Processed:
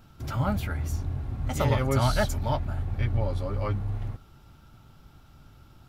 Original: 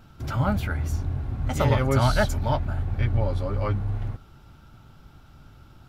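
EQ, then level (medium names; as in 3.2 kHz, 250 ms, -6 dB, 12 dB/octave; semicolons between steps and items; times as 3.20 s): treble shelf 6.3 kHz +5 dB; band-stop 1.5 kHz, Q 20; -3.0 dB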